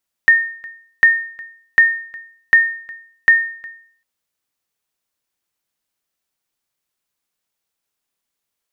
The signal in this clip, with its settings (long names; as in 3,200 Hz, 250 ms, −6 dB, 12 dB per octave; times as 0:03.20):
ping with an echo 1,830 Hz, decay 0.55 s, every 0.75 s, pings 5, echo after 0.36 s, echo −24 dB −3 dBFS